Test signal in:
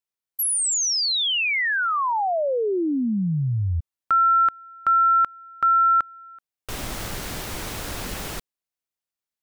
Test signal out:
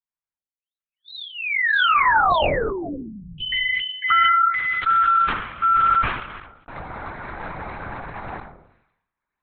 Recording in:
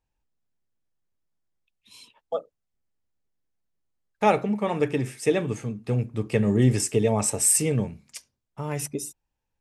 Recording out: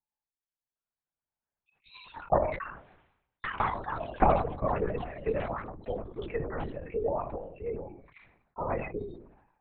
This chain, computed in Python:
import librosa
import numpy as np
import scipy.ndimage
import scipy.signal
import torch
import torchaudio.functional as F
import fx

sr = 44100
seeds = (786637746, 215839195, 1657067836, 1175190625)

y = fx.envelope_sharpen(x, sr, power=1.5)
y = fx.recorder_agc(y, sr, target_db=-11.5, rise_db_per_s=10.0, max_gain_db=30)
y = scipy.signal.sosfilt(scipy.signal.butter(2, 750.0, 'highpass', fs=sr, output='sos'), y)
y = fx.spec_gate(y, sr, threshold_db=-25, keep='strong')
y = scipy.signal.lfilter(np.full(14, 1.0 / 14), 1.0, y)
y = fx.room_shoebox(y, sr, seeds[0], volume_m3=380.0, walls='furnished', distance_m=0.35)
y = fx.echo_pitch(y, sr, ms=787, semitones=7, count=2, db_per_echo=-6.0)
y = (np.kron(scipy.signal.resample_poly(y, 1, 4), np.eye(4)[0]) * 4)[:len(y)]
y = fx.lpc_vocoder(y, sr, seeds[1], excitation='whisper', order=8)
y = fx.sustainer(y, sr, db_per_s=71.0)